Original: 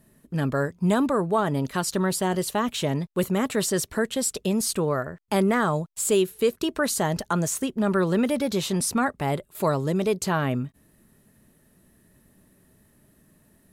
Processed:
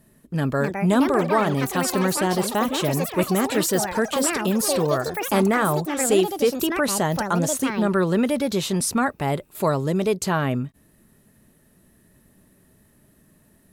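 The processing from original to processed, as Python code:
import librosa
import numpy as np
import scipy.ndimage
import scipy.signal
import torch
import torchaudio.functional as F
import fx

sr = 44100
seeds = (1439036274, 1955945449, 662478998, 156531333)

y = fx.echo_pitch(x, sr, ms=369, semitones=6, count=3, db_per_echo=-6.0)
y = F.gain(torch.from_numpy(y), 2.0).numpy()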